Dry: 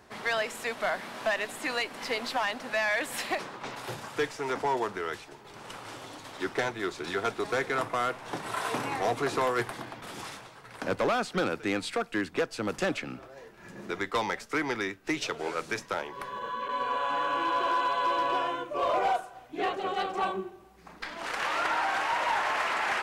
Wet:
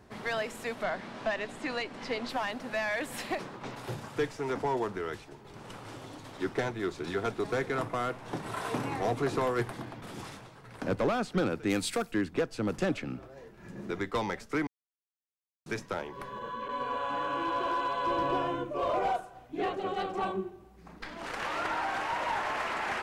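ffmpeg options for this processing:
-filter_complex "[0:a]asettb=1/sr,asplit=3[a][b][c];[a]atrim=end=0.834[d];[b]atrim=start=0.83:end=2.29,asetpts=PTS-STARTPTS,afade=t=in:d=0.004:c=qsin,afade=t=out:st=1.456:d=0.004:c=qsin,lowpass=6.6k[e];[c]atrim=start=2.286[f];[d][e]acrossfade=d=0.004:c1=hsin:c2=qsin[g];[g][f]acrossfade=d=0.004:c1=qsin:c2=hsin,asplit=3[h][i][j];[h]afade=t=out:st=11.69:d=0.02[k];[i]aemphasis=mode=production:type=75kf,afade=t=in:st=11.69:d=0.02,afade=t=out:st=12.11:d=0.02[l];[j]afade=t=in:st=12.11:d=0.02[m];[k][l][m]amix=inputs=3:normalize=0,asettb=1/sr,asplit=3[n][o][p];[n]atrim=end=18.074[q];[o]atrim=start=18.07:end=18.72,asetpts=PTS-STARTPTS,afade=t=in:d=0.004:c=qsin,afade=t=out:st=0.646:d=0.004:c=qsin,lowshelf=f=330:g=8.5[r];[p]atrim=start=18.716[s];[q][r]acrossfade=d=0.004:c1=hsin:c2=qsin[t];[t][s]acrossfade=d=0.004:c1=qsin:c2=hsin,asplit=3[u][v][w];[u]atrim=end=14.67,asetpts=PTS-STARTPTS,afade=t=out:st=14.666:d=0.004:c=hsin[x];[v]atrim=start=14.67:end=15.66,asetpts=PTS-STARTPTS,volume=0[y];[w]atrim=start=15.66,asetpts=PTS-STARTPTS,afade=t=in:d=0.004:c=hsin[z];[x][y][z]concat=n=3:v=0:a=1,lowshelf=f=390:g=11.5,volume=-5.5dB"

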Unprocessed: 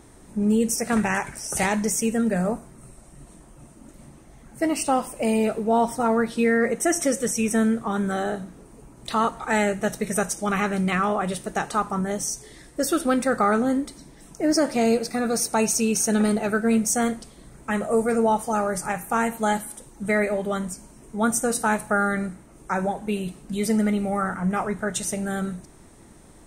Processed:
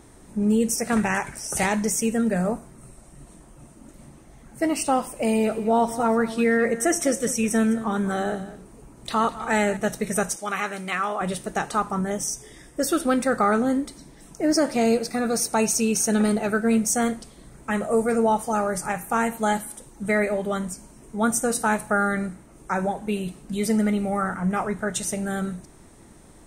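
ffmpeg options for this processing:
-filter_complex "[0:a]asettb=1/sr,asplit=3[a][b][c];[a]atrim=end=5.304[d];[b]atrim=start=5.3:end=9.77,asetpts=PTS-STARTPTS,afade=t=in:d=0.004:c=qsin,afade=t=out:st=4.466:d=0.004:c=qsin,aecho=1:1:206:0.178,atrim=end_sample=197127[e];[c]atrim=start=9.766[f];[d][e]acrossfade=d=0.004:c1=hsin:c2=qsin[g];[g][f]acrossfade=d=0.004:c1=qsin:c2=hsin,asettb=1/sr,asplit=3[h][i][j];[h]atrim=end=10.364[k];[i]atrim=start=10.36:end=11.21,asetpts=PTS-STARTPTS,afade=t=in:d=0.004:c=qsin,afade=t=out:st=0.846:d=0.004:c=qsin,highpass=f=750:p=1[l];[j]atrim=start=11.206[m];[k][l]acrossfade=d=0.004:c1=hsin:c2=qsin[n];[n][m]acrossfade=d=0.004:c1=qsin:c2=hsin,asplit=3[o][p][q];[o]afade=t=out:st=12.09:d=0.02[r];[p]asuperstop=centerf=4200:order=20:qfactor=5.5,afade=t=in:st=12.09:d=0.02,afade=t=out:st=12.8:d=0.02[s];[q]afade=t=in:st=12.8:d=0.02[t];[r][s][t]amix=inputs=3:normalize=0"

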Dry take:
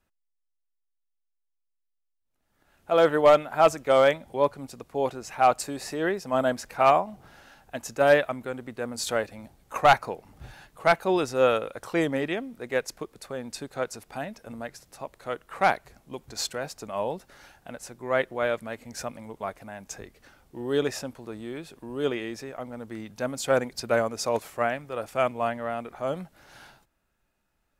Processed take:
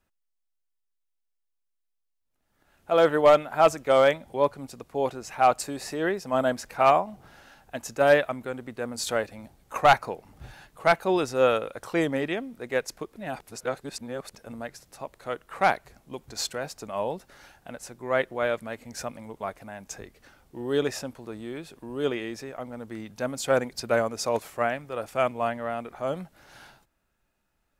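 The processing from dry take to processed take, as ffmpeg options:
-filter_complex "[0:a]asplit=3[a][b][c];[a]atrim=end=13.162[d];[b]atrim=start=13.158:end=14.352,asetpts=PTS-STARTPTS,areverse[e];[c]atrim=start=14.348[f];[d][e]acrossfade=d=0.004:c1=hsin:c2=hsin[g];[g][f]acrossfade=d=0.004:c1=hsin:c2=hsin"

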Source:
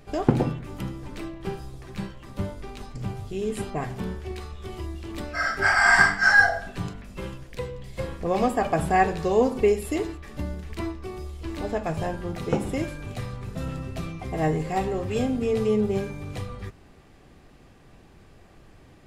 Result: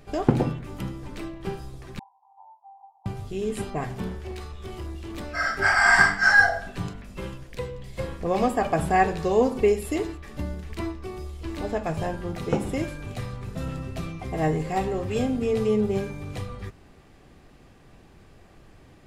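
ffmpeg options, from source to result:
-filter_complex "[0:a]asettb=1/sr,asplit=3[a][b][c];[a]atrim=end=1.994[d];[b]atrim=start=1.99:end=3.06,asetpts=PTS-STARTPTS,afade=t=in:d=0.004:c=qsin,afade=t=out:st=1.066:d=0.004:c=qsin,asuperpass=centerf=840:order=8:qfactor=3.7[e];[c]atrim=start=3.056[f];[d][e]acrossfade=d=0.004:c1=hsin:c2=qsin[g];[g][f]acrossfade=d=0.004:c1=qsin:c2=hsin,asettb=1/sr,asplit=3[h][i][j];[h]atrim=end=4.084[k];[i]atrim=start=4.08:end=5.33,asetpts=PTS-STARTPTS,afade=t=in:d=0.004:c=qsin,afade=t=out:st=1.246:d=0.004:c=qsin,volume=30dB,asoftclip=hard,volume=-30dB[l];[j]atrim=start=5.326[m];[k][l]acrossfade=d=0.004:c1=hsin:c2=qsin[n];[n][m]acrossfade=d=0.004:c1=qsin:c2=hsin"

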